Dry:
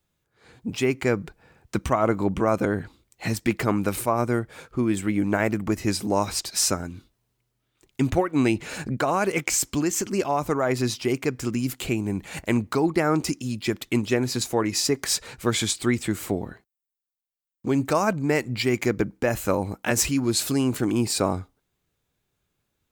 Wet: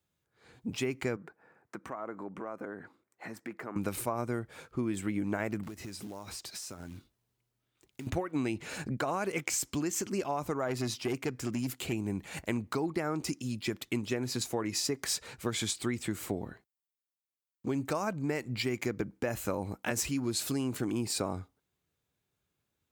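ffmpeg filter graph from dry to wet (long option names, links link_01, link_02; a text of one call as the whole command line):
ffmpeg -i in.wav -filter_complex "[0:a]asettb=1/sr,asplit=3[link_01][link_02][link_03];[link_01]atrim=end=1.164[link_04];[link_02]atrim=start=1.16:end=3.76,asetpts=PTS-STARTPTS,afade=type=in:duration=0.004:curve=qsin,afade=type=out:start_time=2.596:duration=0.004:curve=qsin,highpass=240,highshelf=frequency=2300:width_type=q:width=1.5:gain=-10,acompressor=threshold=-35dB:ratio=2.5:attack=3.2:release=140:knee=1:detection=peak[link_05];[link_03]atrim=start=3.756[link_06];[link_04][link_05]acrossfade=duration=0.004:curve1=hsin:curve2=qsin[link_07];[link_07][link_06]acrossfade=duration=0.004:curve1=qsin:curve2=hsin,asettb=1/sr,asplit=3[link_08][link_09][link_10];[link_08]atrim=end=5.634[link_11];[link_09]atrim=start=5.63:end=8.07,asetpts=PTS-STARTPTS,afade=type=in:duration=0.004:curve=qsin,afade=type=out:start_time=2.436:duration=0.004:curve=qsin,acompressor=threshold=-32dB:ratio=20:attack=3.2:release=140:knee=1:detection=peak,acrusher=bits=4:mode=log:mix=0:aa=0.000001[link_12];[link_10]atrim=start=8.066[link_13];[link_11][link_12]acrossfade=duration=0.004:curve1=hsin:curve2=qsin[link_14];[link_14][link_13]acrossfade=duration=0.004:curve1=qsin:curve2=hsin,asettb=1/sr,asplit=3[link_15][link_16][link_17];[link_15]atrim=end=10.684[link_18];[link_16]atrim=start=10.68:end=11.93,asetpts=PTS-STARTPTS,afade=type=in:duration=0.004:curve=qsin,afade=type=out:start_time=1.246:duration=0.004:curve=qsin,highpass=54,aeval=exprs='clip(val(0),-1,0.0944)':channel_layout=same[link_19];[link_17]atrim=start=11.926[link_20];[link_18][link_19]acrossfade=duration=0.004:curve1=hsin:curve2=qsin[link_21];[link_21][link_20]acrossfade=duration=0.004:curve1=qsin:curve2=hsin,acompressor=threshold=-22dB:ratio=6,highpass=54,volume=-6dB" out.wav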